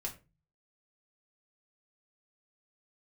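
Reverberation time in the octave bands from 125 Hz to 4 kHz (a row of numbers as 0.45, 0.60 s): 0.70, 0.50, 0.35, 0.25, 0.25, 0.20 s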